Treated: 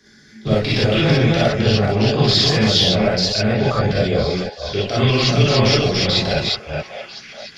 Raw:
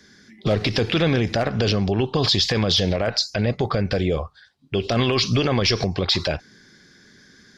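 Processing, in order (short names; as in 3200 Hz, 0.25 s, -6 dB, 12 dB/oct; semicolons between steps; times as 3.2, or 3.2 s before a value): reverse delay 0.233 s, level -2 dB; delay with a stepping band-pass 0.635 s, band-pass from 710 Hz, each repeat 1.4 oct, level -8.5 dB; non-linear reverb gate 80 ms rising, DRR -6.5 dB; gain -4.5 dB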